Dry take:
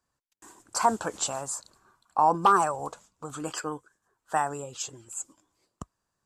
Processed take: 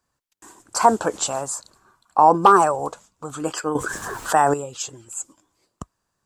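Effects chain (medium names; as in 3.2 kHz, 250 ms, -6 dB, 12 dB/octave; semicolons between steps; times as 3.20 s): dynamic bell 430 Hz, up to +6 dB, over -37 dBFS, Q 0.73; 3.75–4.54 s: level flattener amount 70%; trim +5 dB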